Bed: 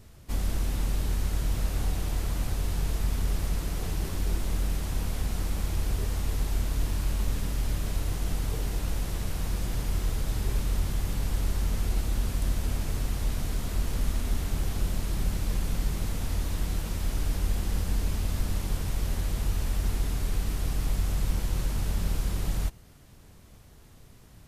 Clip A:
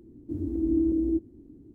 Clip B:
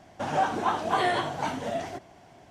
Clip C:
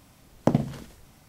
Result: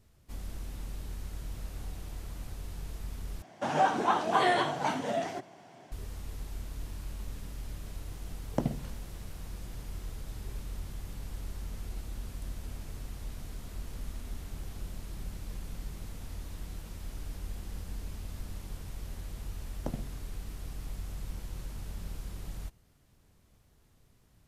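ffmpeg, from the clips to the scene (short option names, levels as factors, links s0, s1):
-filter_complex "[3:a]asplit=2[s0][s1];[0:a]volume=0.251[s2];[2:a]highpass=f=120:w=0.5412,highpass=f=120:w=1.3066[s3];[s2]asplit=2[s4][s5];[s4]atrim=end=3.424[s6];[s3]atrim=end=2.5,asetpts=PTS-STARTPTS,volume=0.944[s7];[s5]atrim=start=5.916[s8];[s0]atrim=end=1.28,asetpts=PTS-STARTPTS,volume=0.355,afade=t=in:d=0.004:c=hsin,afade=t=out:st=1.276:d=0.004:c=hsin,adelay=8110[s9];[s1]atrim=end=1.28,asetpts=PTS-STARTPTS,volume=0.158,afade=t=in:d=0.004:c=hsin,afade=t=out:st=1.276:d=0.004:c=hsin,adelay=19390[s10];[s6][s7]acrossfade=d=0.004:c1=hsin:c2=hsin[s11];[s11][s8]acrossfade=d=0.004:c1=hsin:c2=hsin[s12];[s12][s9][s10]amix=inputs=3:normalize=0"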